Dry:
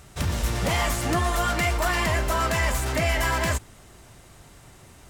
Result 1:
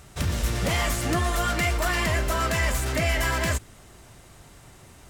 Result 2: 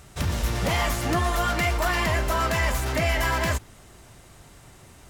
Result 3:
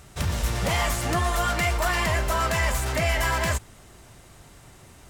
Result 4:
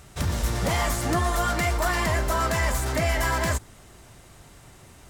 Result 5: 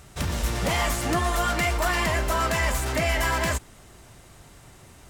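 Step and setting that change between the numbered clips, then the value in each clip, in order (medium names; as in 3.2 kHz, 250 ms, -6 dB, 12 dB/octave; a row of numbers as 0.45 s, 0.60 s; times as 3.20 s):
dynamic bell, frequency: 890 Hz, 8.3 kHz, 290 Hz, 2.7 kHz, 100 Hz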